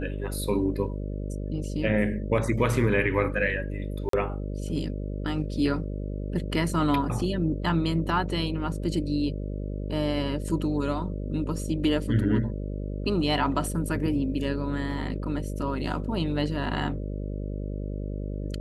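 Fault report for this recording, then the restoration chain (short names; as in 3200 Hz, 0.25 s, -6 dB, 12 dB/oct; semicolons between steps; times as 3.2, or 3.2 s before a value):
buzz 50 Hz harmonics 12 -32 dBFS
4.09–4.13 gap 43 ms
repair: de-hum 50 Hz, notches 12; interpolate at 4.09, 43 ms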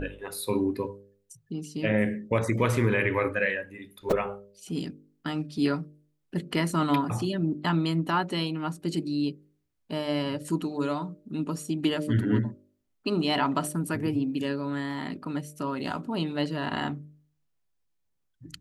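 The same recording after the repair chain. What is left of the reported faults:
none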